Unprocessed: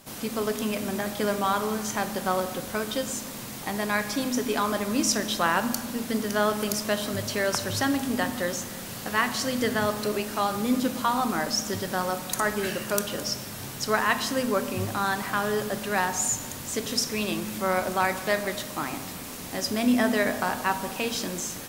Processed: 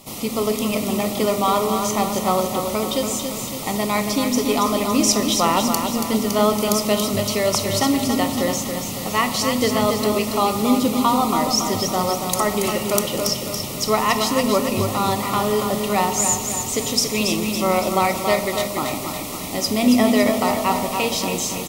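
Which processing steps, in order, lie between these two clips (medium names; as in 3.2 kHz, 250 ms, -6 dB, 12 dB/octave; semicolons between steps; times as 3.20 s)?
Butterworth band-stop 1.6 kHz, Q 2.6; on a send: feedback delay 280 ms, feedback 52%, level -6.5 dB; on the sum: trim +6.5 dB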